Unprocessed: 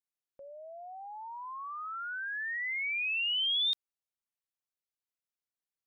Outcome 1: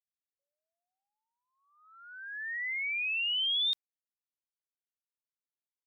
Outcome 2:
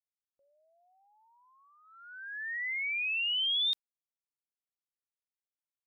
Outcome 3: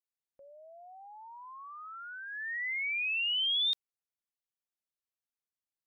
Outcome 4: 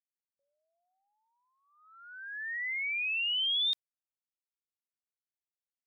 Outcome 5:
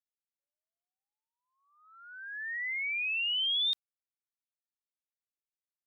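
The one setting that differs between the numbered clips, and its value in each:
noise gate, range: −48, −23, −6, −36, −60 decibels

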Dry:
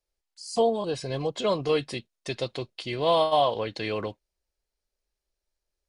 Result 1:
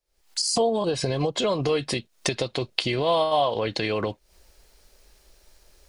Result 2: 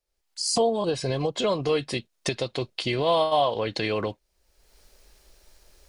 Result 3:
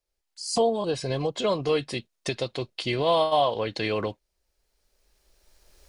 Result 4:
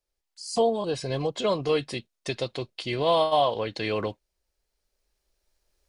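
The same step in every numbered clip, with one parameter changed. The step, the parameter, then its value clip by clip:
camcorder AGC, rising by: 88, 35, 14, 5 dB per second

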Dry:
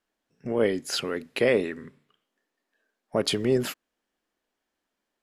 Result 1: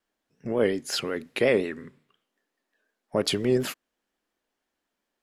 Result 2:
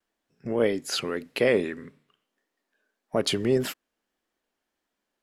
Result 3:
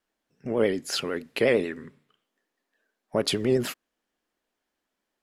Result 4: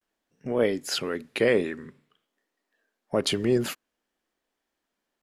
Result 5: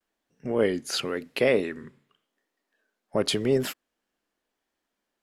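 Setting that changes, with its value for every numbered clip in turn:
pitch vibrato, speed: 5.6, 1.7, 11, 0.5, 0.9 Hertz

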